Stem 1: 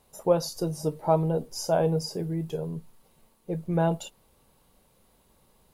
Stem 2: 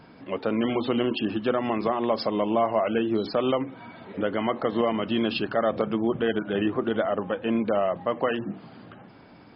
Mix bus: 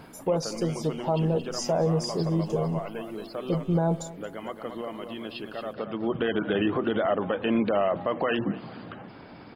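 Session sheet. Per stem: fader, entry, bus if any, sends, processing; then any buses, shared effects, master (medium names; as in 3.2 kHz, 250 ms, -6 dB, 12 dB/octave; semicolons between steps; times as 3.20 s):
+2.0 dB, 0.00 s, no send, echo send -20.5 dB, gain riding 2 s; touch-sensitive phaser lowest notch 210 Hz, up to 2.8 kHz, full sweep at -29.5 dBFS
+2.5 dB, 0.00 s, no send, echo send -23.5 dB, harmonic-percussive split percussive +4 dB; auto duck -16 dB, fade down 0.50 s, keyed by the first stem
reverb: none
echo: feedback delay 226 ms, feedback 36%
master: peak limiter -16 dBFS, peak gain reduction 9.5 dB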